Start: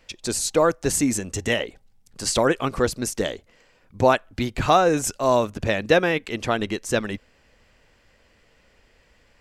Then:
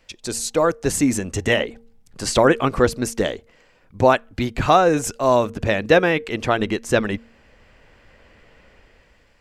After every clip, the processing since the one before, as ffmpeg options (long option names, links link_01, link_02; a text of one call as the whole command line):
ffmpeg -i in.wav -filter_complex "[0:a]bandreject=frequency=230.3:width_type=h:width=4,bandreject=frequency=460.6:width_type=h:width=4,acrossover=split=3100[link_01][link_02];[link_01]dynaudnorm=framelen=260:gausssize=7:maxgain=10dB[link_03];[link_03][link_02]amix=inputs=2:normalize=0,volume=-1dB" out.wav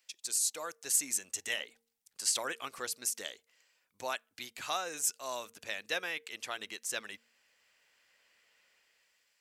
ffmpeg -i in.wav -af "aderivative,volume=-3.5dB" out.wav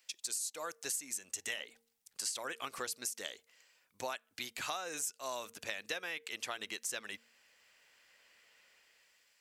ffmpeg -i in.wav -af "acompressor=threshold=-39dB:ratio=8,volume=3.5dB" out.wav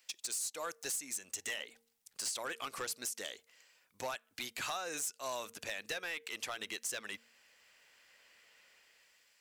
ffmpeg -i in.wav -af "volume=34dB,asoftclip=hard,volume=-34dB,volume=1.5dB" out.wav